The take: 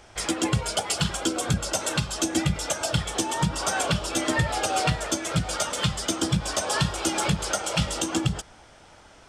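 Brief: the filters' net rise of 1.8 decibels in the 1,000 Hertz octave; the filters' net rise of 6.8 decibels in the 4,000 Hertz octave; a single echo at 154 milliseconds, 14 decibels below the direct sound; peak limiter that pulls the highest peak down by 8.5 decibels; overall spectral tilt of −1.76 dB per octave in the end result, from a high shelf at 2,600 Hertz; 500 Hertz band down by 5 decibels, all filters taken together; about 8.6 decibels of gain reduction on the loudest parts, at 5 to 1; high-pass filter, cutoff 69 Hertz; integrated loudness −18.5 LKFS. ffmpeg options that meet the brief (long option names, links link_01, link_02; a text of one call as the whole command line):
ffmpeg -i in.wav -af "highpass=69,equalizer=frequency=500:width_type=o:gain=-9,equalizer=frequency=1000:width_type=o:gain=4.5,highshelf=frequency=2600:gain=5.5,equalizer=frequency=4000:width_type=o:gain=4,acompressor=threshold=-27dB:ratio=5,alimiter=limit=-21dB:level=0:latency=1,aecho=1:1:154:0.2,volume=13dB" out.wav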